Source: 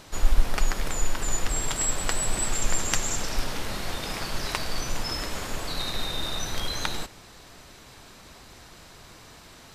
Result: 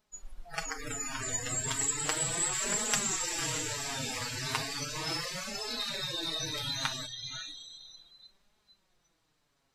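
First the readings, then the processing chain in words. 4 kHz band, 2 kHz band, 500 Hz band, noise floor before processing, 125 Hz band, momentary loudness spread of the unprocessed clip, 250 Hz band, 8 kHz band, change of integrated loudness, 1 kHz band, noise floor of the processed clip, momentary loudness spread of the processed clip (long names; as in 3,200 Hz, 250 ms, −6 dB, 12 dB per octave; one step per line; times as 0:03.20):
−2.0 dB, −3.0 dB, −5.0 dB, −49 dBFS, −7.5 dB, 21 LU, −5.0 dB, −1.5 dB, −3.0 dB, −5.0 dB, −75 dBFS, 12 LU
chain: feedback delay with all-pass diffusion 552 ms, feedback 49%, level −4 dB
flanger 0.35 Hz, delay 4.6 ms, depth 3.6 ms, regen +4%
noise reduction from a noise print of the clip's start 26 dB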